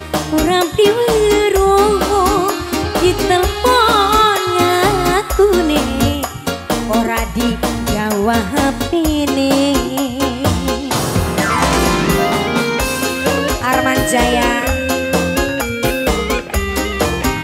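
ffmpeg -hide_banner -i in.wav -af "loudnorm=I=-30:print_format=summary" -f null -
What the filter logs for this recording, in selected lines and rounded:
Input Integrated:    -14.9 LUFS
Input True Peak:      -1.0 dBTP
Input LRA:             3.7 LU
Input Threshold:     -24.9 LUFS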